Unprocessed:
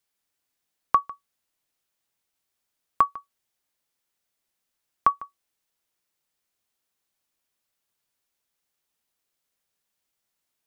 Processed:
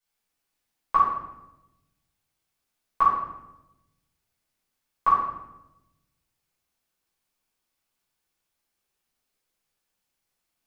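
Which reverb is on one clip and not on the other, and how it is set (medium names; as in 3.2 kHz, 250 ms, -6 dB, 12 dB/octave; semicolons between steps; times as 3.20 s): simulated room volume 330 m³, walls mixed, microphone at 5.1 m; trim -11 dB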